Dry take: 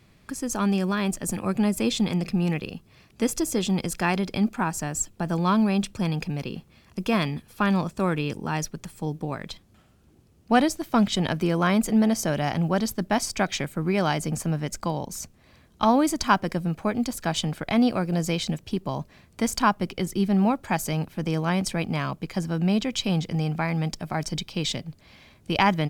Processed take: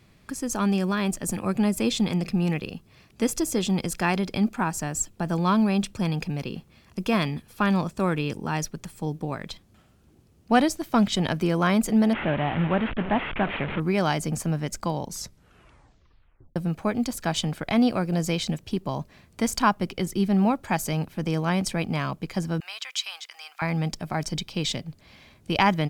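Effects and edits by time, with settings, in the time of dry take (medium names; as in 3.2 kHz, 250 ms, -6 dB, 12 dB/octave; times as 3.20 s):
12.13–13.80 s: one-bit delta coder 16 kbps, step -25 dBFS
15.05 s: tape stop 1.51 s
22.60–23.62 s: high-pass 1.1 kHz 24 dB/octave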